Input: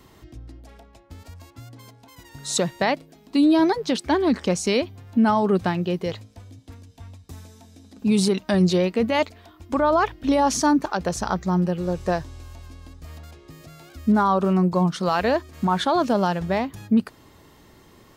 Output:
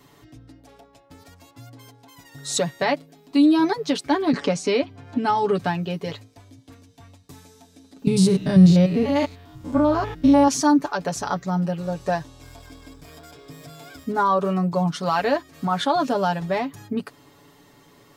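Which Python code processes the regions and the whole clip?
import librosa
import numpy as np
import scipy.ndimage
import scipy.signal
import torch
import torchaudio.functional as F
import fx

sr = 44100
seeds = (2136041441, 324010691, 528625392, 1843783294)

y = fx.chain(x, sr, fx.highpass(hz=56.0, slope=12),
    fx.air_absorb(metres=59.0),
    fx.band_squash(depth_pct=70), at=(4.33, 5.59))
y = fx.chain(y, sr, fx.spec_steps(hold_ms=100),
    fx.bass_treble(bass_db=15, treble_db=3), at=(8.07, 10.48))
y = fx.chain(y, sr, fx.law_mismatch(coded='mu'),
    fx.ripple_eq(per_octave=1.7, db=8), at=(12.41, 14.04))
y = fx.low_shelf(y, sr, hz=73.0, db=-11.5)
y = y + 0.75 * np.pad(y, (int(7.0 * sr / 1000.0), 0))[:len(y)]
y = F.gain(torch.from_numpy(y), -2.0).numpy()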